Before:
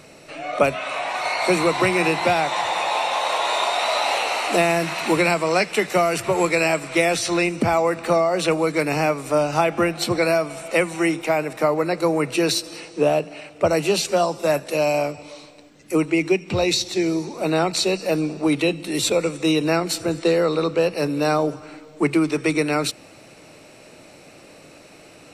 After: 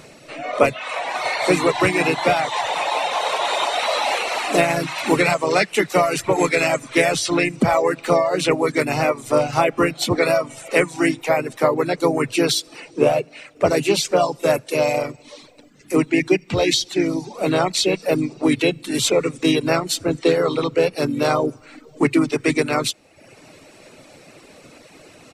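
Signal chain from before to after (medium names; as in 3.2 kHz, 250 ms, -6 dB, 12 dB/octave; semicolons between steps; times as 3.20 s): harmony voices -3 st -6 dB; reverb removal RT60 0.75 s; trim +1.5 dB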